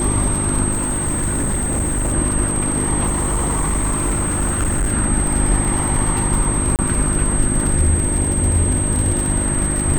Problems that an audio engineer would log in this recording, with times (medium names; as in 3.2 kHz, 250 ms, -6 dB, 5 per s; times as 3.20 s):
crackle 80 per s -21 dBFS
hum 50 Hz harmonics 7 -23 dBFS
whine 8.3 kHz -21 dBFS
0.71–2.14 s: clipped -15.5 dBFS
3.06–4.93 s: clipped -14.5 dBFS
6.76–6.79 s: dropout 28 ms